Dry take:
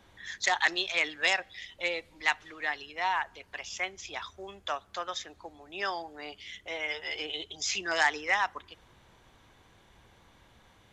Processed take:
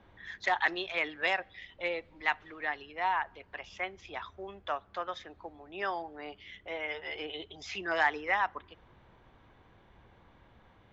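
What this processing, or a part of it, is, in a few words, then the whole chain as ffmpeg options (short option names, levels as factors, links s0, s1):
phone in a pocket: -af "lowpass=3500,highshelf=f=2400:g=-9,volume=1.12"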